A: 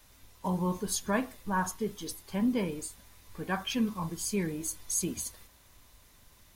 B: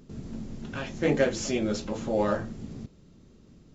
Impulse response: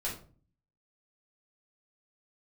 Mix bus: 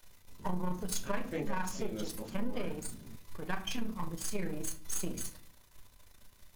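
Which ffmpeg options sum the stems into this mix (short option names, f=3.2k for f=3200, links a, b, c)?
-filter_complex "[0:a]aeval=exprs='if(lt(val(0),0),0.251*val(0),val(0))':c=same,tremolo=f=28:d=0.667,volume=0.5dB,asplit=3[a][b][c];[b]volume=-7.5dB[d];[1:a]adelay=300,volume=-11.5dB[e];[c]apad=whole_len=178242[f];[e][f]sidechaincompress=threshold=-37dB:ratio=8:attack=16:release=121[g];[2:a]atrim=start_sample=2205[h];[d][h]afir=irnorm=-1:irlink=0[i];[a][g][i]amix=inputs=3:normalize=0,acompressor=threshold=-29dB:ratio=3"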